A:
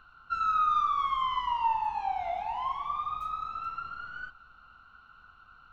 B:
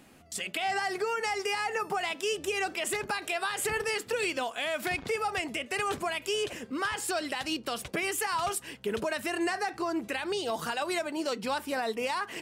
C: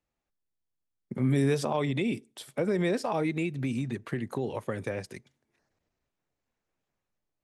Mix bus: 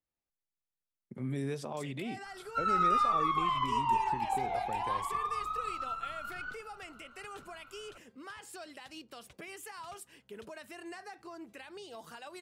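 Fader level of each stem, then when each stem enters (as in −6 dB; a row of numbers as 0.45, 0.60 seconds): −1.5, −15.5, −10.5 decibels; 2.25, 1.45, 0.00 seconds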